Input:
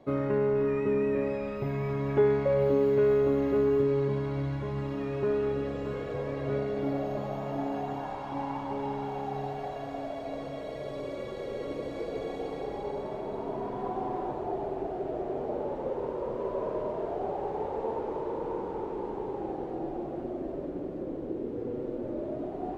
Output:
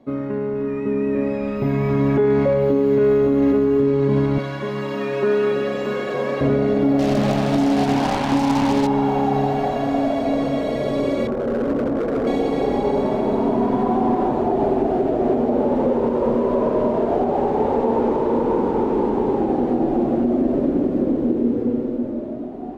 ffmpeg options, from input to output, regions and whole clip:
-filter_complex "[0:a]asettb=1/sr,asplit=3[a][b][c];[a]atrim=end=4.384[d];[b]atrim=start=4.38:end=6.41,asetpts=PTS-STARTPTS,afade=t=in:d=0.004:c=qsin,afade=t=out:st=2.026:d=0.004:c=qsin,highpass=f=630:p=1,aecho=1:1:5.4:0.59,atrim=end_sample=89523[e];[c]atrim=start=6.406[f];[d][e]acrossfade=d=0.004:c1=hsin:c2=qsin[g];[g][f]acrossfade=d=0.004:c1=qsin:c2=hsin,asettb=1/sr,asplit=3[h][i][j];[h]atrim=end=6.994[k];[i]atrim=start=6.99:end=8.87,asetpts=PTS-STARTPTS,afade=t=in:d=0.004:c=qsin,afade=t=out:st=1.876:d=0.004:c=qsin,lowshelf=f=250:g=4,acrusher=bits=5:mix=0:aa=0.5[l];[j]atrim=start=8.866[m];[k][l]acrossfade=d=0.004:c1=hsin:c2=qsin[n];[n][m]acrossfade=d=0.004:c1=qsin:c2=hsin,asettb=1/sr,asplit=3[o][p][q];[o]atrim=end=11.274[r];[p]atrim=start=11.27:end=12.27,asetpts=PTS-STARTPTS,afade=t=in:d=0.004:c=qsin,afade=t=out:st=0.996:d=0.004:c=qsin,lowpass=f=1.3k:w=0.5412,lowpass=f=1.3k:w=1.3066,volume=34dB,asoftclip=hard,volume=-34dB[s];[q]atrim=start=12.266[t];[r][s]acrossfade=d=0.004:c1=hsin:c2=qsin[u];[u][t]acrossfade=d=0.004:c1=qsin:c2=hsin,dynaudnorm=f=340:g=9:m=14dB,equalizer=f=240:w=3.9:g=14,alimiter=limit=-10dB:level=0:latency=1:release=86"

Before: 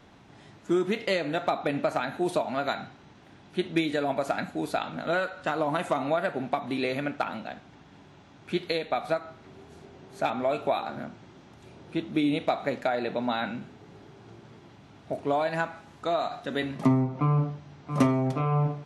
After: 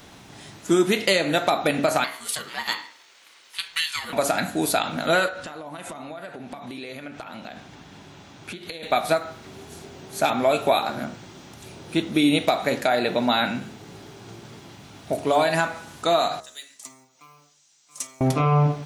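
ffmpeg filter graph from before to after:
-filter_complex "[0:a]asettb=1/sr,asplit=3[a][b][c];[a]atrim=end=2.044[d];[b]atrim=start=2.04:end=4.13,asetpts=PTS-STARTPTS,afade=t=in:d=0.004:c=qsin,afade=t=out:st=2.086:d=0.004:c=qsin,highpass=f=1.1k:w=0.5412,highpass=f=1.1k:w=1.3066,aeval=exprs='val(0)*sin(2*PI*480*n/s)':c=same[e];[c]atrim=start=4.126[f];[d][e]acrossfade=d=0.004:c1=hsin:c2=qsin[g];[g][f]acrossfade=d=0.004:c1=qsin:c2=hsin,asettb=1/sr,asplit=3[h][i][j];[h]atrim=end=5.284[k];[i]atrim=start=5.28:end=8.83,asetpts=PTS-STARTPTS,afade=t=in:d=0.004:c=qsin,afade=t=out:st=3.546:d=0.004:c=qsin,highshelf=f=7.4k:g=-7,acompressor=threshold=-40dB:ratio=10:attack=3.2:release=140:knee=1:detection=peak[l];[j]atrim=start=8.826[m];[k][l]acrossfade=d=0.004:c1=hsin:c2=qsin[n];[n][m]acrossfade=d=0.004:c1=qsin:c2=hsin,asettb=1/sr,asplit=3[o][p][q];[o]atrim=end=16.404[r];[p]atrim=start=16.4:end=18.21,asetpts=PTS-STARTPTS,afade=t=in:d=0.004:c=qsin,afade=t=out:st=1.806:d=0.004:c=qsin,bandpass=f=7.3k:t=q:w=2.9,acrusher=bits=9:mode=log:mix=0:aa=0.000001[s];[q]atrim=start=18.206[t];[r][s]acrossfade=d=0.004:c1=hsin:c2=qsin[u];[u][t]acrossfade=d=0.004:c1=qsin:c2=hsin,aemphasis=mode=production:type=75fm,bandreject=f=70.39:t=h:w=4,bandreject=f=140.78:t=h:w=4,bandreject=f=211.17:t=h:w=4,bandreject=f=281.56:t=h:w=4,bandreject=f=351.95:t=h:w=4,bandreject=f=422.34:t=h:w=4,bandreject=f=492.73:t=h:w=4,bandreject=f=563.12:t=h:w=4,bandreject=f=633.51:t=h:w=4,bandreject=f=703.9:t=h:w=4,bandreject=f=774.29:t=h:w=4,bandreject=f=844.68:t=h:w=4,bandreject=f=915.07:t=h:w=4,bandreject=f=985.46:t=h:w=4,bandreject=f=1.05585k:t=h:w=4,bandreject=f=1.12624k:t=h:w=4,bandreject=f=1.19663k:t=h:w=4,bandreject=f=1.26702k:t=h:w=4,bandreject=f=1.33741k:t=h:w=4,bandreject=f=1.4078k:t=h:w=4,bandreject=f=1.47819k:t=h:w=4,bandreject=f=1.54858k:t=h:w=4,bandreject=f=1.61897k:t=h:w=4,bandreject=f=1.68936k:t=h:w=4,bandreject=f=1.75975k:t=h:w=4,bandreject=f=1.83014k:t=h:w=4,bandreject=f=1.90053k:t=h:w=4,bandreject=f=1.97092k:t=h:w=4,bandreject=f=2.04131k:t=h:w=4,bandreject=f=2.1117k:t=h:w=4,alimiter=level_in=14.5dB:limit=-1dB:release=50:level=0:latency=1,volume=-7dB"

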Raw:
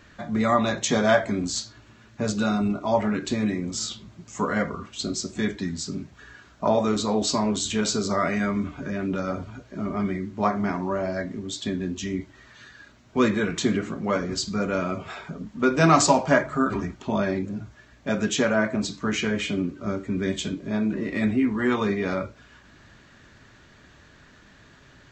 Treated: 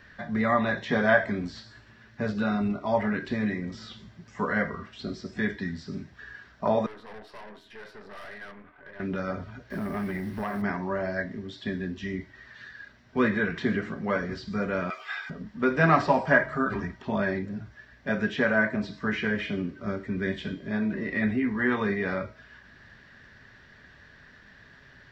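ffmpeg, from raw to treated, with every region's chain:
-filter_complex "[0:a]asettb=1/sr,asplit=3[a][b][c];[a]atrim=end=6.864[d];[b]atrim=start=6.86:end=9,asetpts=PTS-STARTPTS,afade=t=in:d=0.004:c=qsin,afade=t=out:st=2.136:d=0.004:c=qsin,acrossover=split=400 2400:gain=0.158 1 0.0631[e][f][g];[e][f][g]amix=inputs=3:normalize=0,flanger=delay=1.9:depth=2.7:regen=-51:speed=2:shape=sinusoidal,aeval=exprs='(tanh(89.1*val(0)+0.75)-tanh(0.75))/89.1':c=same[h];[c]atrim=start=8.996[i];[d][h]acrossfade=d=0.004:c1=hsin:c2=qsin[j];[j][i]acrossfade=d=0.004:c1=qsin:c2=hsin,asettb=1/sr,asplit=3[k][l][m];[k]atrim=end=9.704[n];[l]atrim=start=9.7:end=10.62,asetpts=PTS-STARTPTS,afade=t=in:d=0.004:c=qsin,afade=t=out:st=0.916:d=0.004:c=qsin,acompressor=threshold=-31dB:ratio=10:attack=3.2:release=140:knee=1:detection=peak,acrusher=bits=5:mode=log:mix=0:aa=0.000001,aeval=exprs='0.0708*sin(PI/2*1.78*val(0)/0.0708)':c=same[o];[m]atrim=start=10.616[p];[n][o]acrossfade=d=0.004:c1=hsin:c2=qsin[q];[q][p]acrossfade=d=0.004:c1=qsin:c2=hsin,asettb=1/sr,asplit=3[r][s][t];[r]atrim=end=14.904[u];[s]atrim=start=14.9:end=15.3,asetpts=PTS-STARTPTS,afade=t=in:d=0.004:c=qsin,afade=t=out:st=0.396:d=0.004:c=qsin,highpass=1.1k,highshelf=f=2.8k:g=11.5,aecho=1:1:2.5:0.5,atrim=end_sample=17640[v];[t]atrim=start=15.296[w];[u][v]acrossfade=d=0.004:c1=hsin:c2=qsin[x];[x][w]acrossfade=d=0.004:c1=qsin:c2=hsin,bandreject=f=319.4:t=h:w=4,bandreject=f=638.8:t=h:w=4,bandreject=f=958.2:t=h:w=4,bandreject=f=1.2776k:t=h:w=4,bandreject=f=1.597k:t=h:w=4,bandreject=f=1.9164k:t=h:w=4,bandreject=f=2.2358k:t=h:w=4,bandreject=f=2.5552k:t=h:w=4,bandreject=f=2.8746k:t=h:w=4,bandreject=f=3.194k:t=h:w=4,bandreject=f=3.5134k:t=h:w=4,bandreject=f=3.8328k:t=h:w=4,bandreject=f=4.1522k:t=h:w=4,bandreject=f=4.4716k:t=h:w=4,bandreject=f=4.791k:t=h:w=4,bandreject=f=5.1104k:t=h:w=4,bandreject=f=5.4298k:t=h:w=4,bandreject=f=5.7492k:t=h:w=4,bandreject=f=6.0686k:t=h:w=4,bandreject=f=6.388k:t=h:w=4,bandreject=f=6.7074k:t=h:w=4,bandreject=f=7.0268k:t=h:w=4,bandreject=f=7.3462k:t=h:w=4,bandreject=f=7.6656k:t=h:w=4,bandreject=f=7.985k:t=h:w=4,bandreject=f=8.3044k:t=h:w=4,bandreject=f=8.6238k:t=h:w=4,bandreject=f=8.9432k:t=h:w=4,bandreject=f=9.2626k:t=h:w=4,bandreject=f=9.582k:t=h:w=4,acrossover=split=3100[y][z];[z]acompressor=threshold=-48dB:ratio=4:attack=1:release=60[aa];[y][aa]amix=inputs=2:normalize=0,superequalizer=6b=0.631:11b=2.24:15b=0.282,volume=-3dB"

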